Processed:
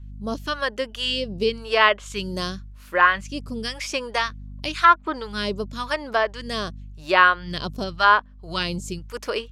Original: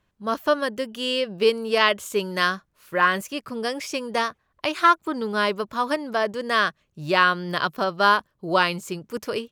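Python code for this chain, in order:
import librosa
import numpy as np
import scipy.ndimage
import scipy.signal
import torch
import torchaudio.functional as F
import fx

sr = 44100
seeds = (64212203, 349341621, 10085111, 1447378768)

y = fx.add_hum(x, sr, base_hz=50, snr_db=17)
y = fx.phaser_stages(y, sr, stages=2, low_hz=100.0, high_hz=1700.0, hz=0.94, feedback_pct=40)
y = fx.env_lowpass_down(y, sr, base_hz=2800.0, full_db=-16.0)
y = y * 10.0 ** (1.5 / 20.0)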